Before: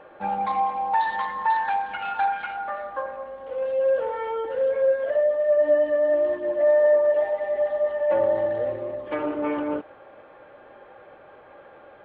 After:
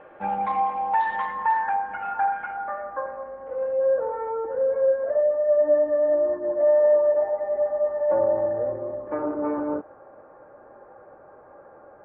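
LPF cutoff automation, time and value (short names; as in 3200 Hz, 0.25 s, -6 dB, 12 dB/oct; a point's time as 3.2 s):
LPF 24 dB/oct
1.33 s 2900 Hz
1.76 s 1800 Hz
3.46 s 1800 Hz
4.04 s 1400 Hz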